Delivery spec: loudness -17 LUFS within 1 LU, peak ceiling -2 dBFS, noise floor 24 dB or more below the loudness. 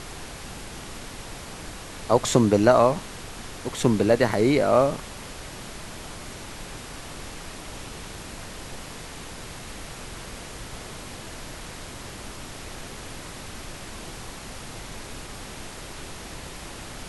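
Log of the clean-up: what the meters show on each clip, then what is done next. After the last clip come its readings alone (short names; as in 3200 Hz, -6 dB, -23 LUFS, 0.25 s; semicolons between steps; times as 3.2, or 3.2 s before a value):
noise floor -40 dBFS; noise floor target -53 dBFS; loudness -28.5 LUFS; peak -3.5 dBFS; loudness target -17.0 LUFS
-> noise print and reduce 13 dB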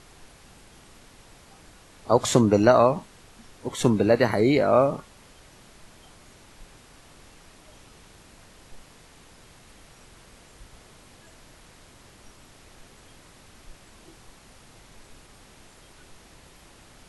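noise floor -53 dBFS; loudness -21.5 LUFS; peak -3.5 dBFS; loudness target -17.0 LUFS
-> gain +4.5 dB; limiter -2 dBFS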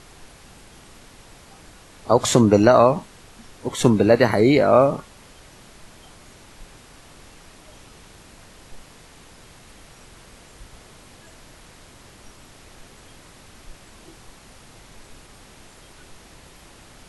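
loudness -17.0 LUFS; peak -2.0 dBFS; noise floor -48 dBFS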